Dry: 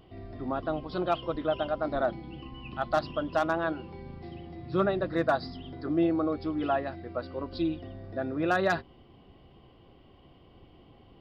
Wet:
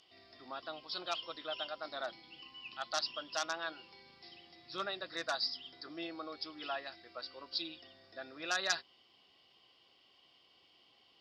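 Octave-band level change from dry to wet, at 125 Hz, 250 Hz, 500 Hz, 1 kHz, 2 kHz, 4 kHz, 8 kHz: -27.0 dB, -20.5 dB, -15.0 dB, -10.5 dB, -5.5 dB, +6.0 dB, no reading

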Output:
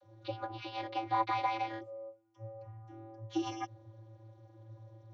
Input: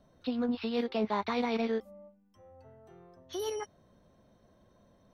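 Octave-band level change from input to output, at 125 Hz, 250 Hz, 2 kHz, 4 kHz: +5.0 dB, -8.5 dB, -1.5 dB, -4.0 dB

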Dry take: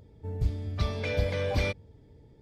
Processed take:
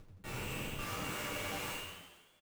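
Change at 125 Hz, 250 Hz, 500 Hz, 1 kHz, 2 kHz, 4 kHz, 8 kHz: -16.0 dB, -7.0 dB, -13.0 dB, -1.5 dB, -4.0 dB, -2.0 dB, no reading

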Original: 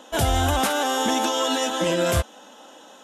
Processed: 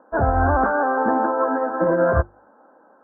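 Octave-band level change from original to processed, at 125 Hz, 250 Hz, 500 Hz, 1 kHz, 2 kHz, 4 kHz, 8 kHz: +1.5 dB, +2.0 dB, +4.5 dB, +4.0 dB, +2.5 dB, under -40 dB, under -40 dB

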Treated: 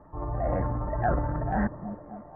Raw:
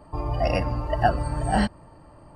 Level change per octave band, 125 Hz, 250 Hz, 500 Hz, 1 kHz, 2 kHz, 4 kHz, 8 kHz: -3.0 dB, -2.5 dB, -4.0 dB, -5.0 dB, -6.5 dB, under -35 dB, under -35 dB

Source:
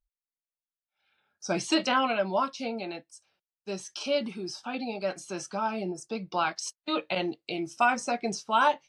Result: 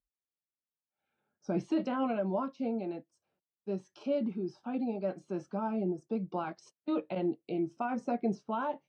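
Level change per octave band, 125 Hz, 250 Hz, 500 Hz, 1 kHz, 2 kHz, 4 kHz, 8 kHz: +1.5 dB, +0.5 dB, -3.5 dB, -10.0 dB, -16.0 dB, -21.0 dB, under -20 dB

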